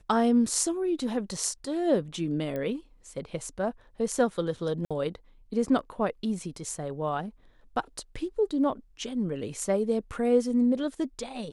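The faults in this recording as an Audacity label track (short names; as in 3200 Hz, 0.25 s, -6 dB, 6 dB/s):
2.560000	2.560000	pop -22 dBFS
4.850000	4.910000	gap 56 ms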